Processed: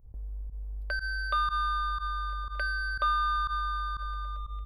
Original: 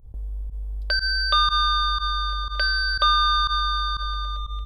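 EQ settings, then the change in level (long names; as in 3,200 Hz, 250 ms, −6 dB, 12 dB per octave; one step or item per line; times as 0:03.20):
flat-topped bell 5,200 Hz −13 dB
−7.0 dB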